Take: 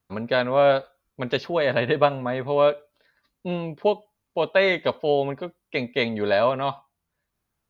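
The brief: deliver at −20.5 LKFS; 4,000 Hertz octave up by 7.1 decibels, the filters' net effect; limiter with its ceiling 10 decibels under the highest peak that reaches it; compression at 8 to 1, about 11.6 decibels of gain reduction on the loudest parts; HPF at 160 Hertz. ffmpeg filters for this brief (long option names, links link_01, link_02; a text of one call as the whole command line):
ffmpeg -i in.wav -af "highpass=160,equalizer=frequency=4000:width_type=o:gain=8.5,acompressor=threshold=-25dB:ratio=8,volume=13.5dB,alimiter=limit=-8dB:level=0:latency=1" out.wav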